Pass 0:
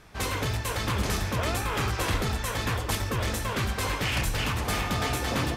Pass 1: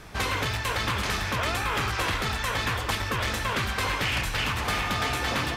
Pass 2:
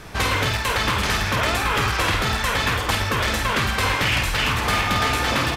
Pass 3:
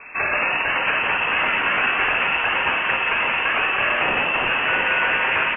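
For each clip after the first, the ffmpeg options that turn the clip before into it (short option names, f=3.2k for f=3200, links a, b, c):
-filter_complex "[0:a]acrossover=split=890|4600[a][b][c];[a]acompressor=threshold=-39dB:ratio=4[d];[b]acompressor=threshold=-34dB:ratio=4[e];[c]acompressor=threshold=-50dB:ratio=4[f];[d][e][f]amix=inputs=3:normalize=0,volume=7.5dB"
-filter_complex "[0:a]asplit=2[a][b];[b]adelay=50,volume=-7dB[c];[a][c]amix=inputs=2:normalize=0,volume=5.5dB"
-filter_complex "[0:a]lowpass=f=2.3k:t=q:w=0.5098,lowpass=f=2.3k:t=q:w=0.6013,lowpass=f=2.3k:t=q:w=0.9,lowpass=f=2.3k:t=q:w=2.563,afreqshift=-2700,asplit=8[a][b][c][d][e][f][g][h];[b]adelay=176,afreqshift=130,volume=-4.5dB[i];[c]adelay=352,afreqshift=260,volume=-10dB[j];[d]adelay=528,afreqshift=390,volume=-15.5dB[k];[e]adelay=704,afreqshift=520,volume=-21dB[l];[f]adelay=880,afreqshift=650,volume=-26.6dB[m];[g]adelay=1056,afreqshift=780,volume=-32.1dB[n];[h]adelay=1232,afreqshift=910,volume=-37.6dB[o];[a][i][j][k][l][m][n][o]amix=inputs=8:normalize=0"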